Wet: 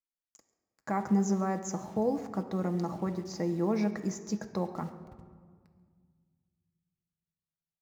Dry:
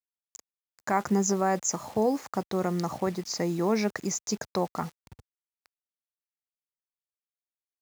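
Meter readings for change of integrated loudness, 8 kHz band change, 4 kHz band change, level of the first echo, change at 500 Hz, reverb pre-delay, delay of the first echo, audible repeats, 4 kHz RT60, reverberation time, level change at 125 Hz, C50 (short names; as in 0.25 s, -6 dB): -3.5 dB, -12.0 dB, -11.5 dB, -21.5 dB, -5.0 dB, 4 ms, 0.138 s, 1, 0.95 s, 1.8 s, -0.5 dB, 11.0 dB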